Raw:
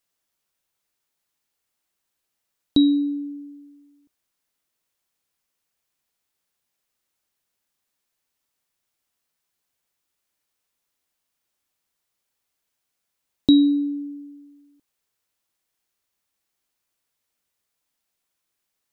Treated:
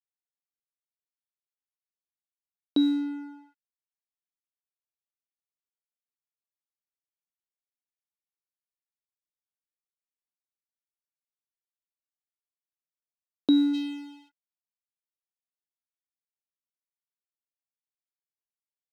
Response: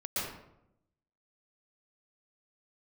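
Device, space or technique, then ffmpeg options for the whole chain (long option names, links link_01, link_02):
pocket radio on a weak battery: -filter_complex "[0:a]highpass=370,lowpass=3300,aeval=exprs='sgn(val(0))*max(abs(val(0))-0.00562,0)':channel_layout=same,equalizer=frequency=1600:width_type=o:width=0.4:gain=9.5,acrossover=split=2900[link_01][link_02];[link_02]acompressor=threshold=-38dB:ratio=4:attack=1:release=60[link_03];[link_01][link_03]amix=inputs=2:normalize=0,asplit=3[link_04][link_05][link_06];[link_04]afade=type=out:start_time=13.73:duration=0.02[link_07];[link_05]highshelf=frequency=2100:width_type=q:width=3:gain=12.5,afade=type=in:start_time=13.73:duration=0.02,afade=type=out:start_time=14.28:duration=0.02[link_08];[link_06]afade=type=in:start_time=14.28:duration=0.02[link_09];[link_07][link_08][link_09]amix=inputs=3:normalize=0"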